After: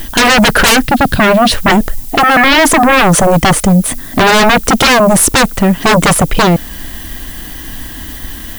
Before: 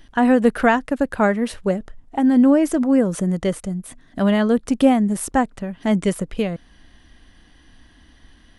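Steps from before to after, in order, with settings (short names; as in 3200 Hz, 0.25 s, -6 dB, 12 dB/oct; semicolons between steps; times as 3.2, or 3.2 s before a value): 0.84–1.52 graphic EQ 125/250/500/1000/2000/4000/8000 Hz +9/+4/-11/-11/-7/+9/-10 dB; sine folder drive 20 dB, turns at -3 dBFS; added noise violet -29 dBFS; gain -1 dB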